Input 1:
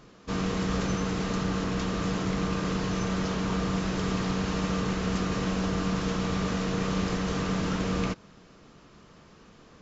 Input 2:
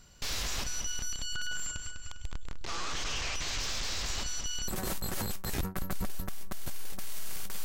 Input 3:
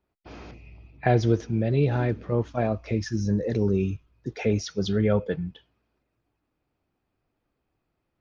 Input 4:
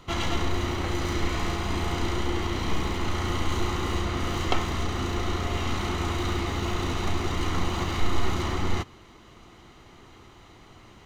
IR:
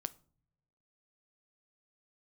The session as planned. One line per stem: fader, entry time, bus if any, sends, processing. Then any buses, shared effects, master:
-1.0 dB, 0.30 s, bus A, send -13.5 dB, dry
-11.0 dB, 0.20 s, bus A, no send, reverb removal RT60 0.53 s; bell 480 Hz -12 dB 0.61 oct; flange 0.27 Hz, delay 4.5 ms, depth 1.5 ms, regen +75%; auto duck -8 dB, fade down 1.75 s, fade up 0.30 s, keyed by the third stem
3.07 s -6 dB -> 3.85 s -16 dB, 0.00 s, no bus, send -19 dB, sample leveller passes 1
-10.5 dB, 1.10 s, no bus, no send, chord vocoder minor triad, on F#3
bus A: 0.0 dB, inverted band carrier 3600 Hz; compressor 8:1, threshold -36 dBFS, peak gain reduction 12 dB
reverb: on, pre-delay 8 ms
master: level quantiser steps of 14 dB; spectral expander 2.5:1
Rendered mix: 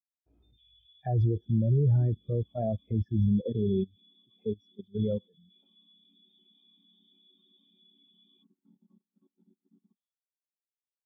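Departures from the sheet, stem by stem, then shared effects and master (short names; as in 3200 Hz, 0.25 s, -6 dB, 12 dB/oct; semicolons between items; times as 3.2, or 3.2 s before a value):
stem 1: send off; stem 3 -6.0 dB -> +0.5 dB; reverb return -6.5 dB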